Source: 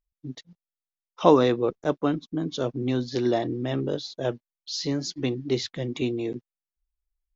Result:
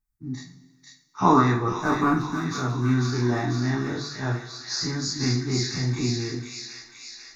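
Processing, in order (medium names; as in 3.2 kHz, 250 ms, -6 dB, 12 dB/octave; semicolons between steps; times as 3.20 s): every event in the spectrogram widened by 60 ms; 1.73–2.22 s: waveshaping leveller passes 1; static phaser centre 1.3 kHz, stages 4; feedback echo behind a high-pass 493 ms, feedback 65%, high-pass 1.9 kHz, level -3 dB; two-slope reverb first 0.32 s, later 1.5 s, from -16 dB, DRR -1 dB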